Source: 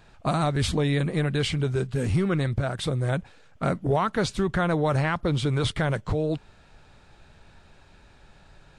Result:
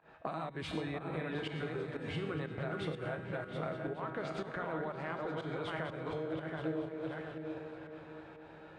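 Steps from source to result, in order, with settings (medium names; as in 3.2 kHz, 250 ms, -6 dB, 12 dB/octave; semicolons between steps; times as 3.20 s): backward echo that repeats 361 ms, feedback 43%, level -5 dB; high-pass 71 Hz; three-band isolator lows -13 dB, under 270 Hz, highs -19 dB, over 2.9 kHz; in parallel at +2.5 dB: peak limiter -21.5 dBFS, peak gain reduction 11 dB; on the sum: compression 10:1, threshold -31 dBFS, peak gain reduction 16 dB; feedback comb 160 Hz, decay 0.79 s, harmonics all, mix 80%; volume shaper 122 bpm, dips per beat 1, -19 dB, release 132 ms; delay with an opening low-pass 230 ms, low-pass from 200 Hz, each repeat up 2 oct, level -6 dB; tape noise reduction on one side only decoder only; trim +7 dB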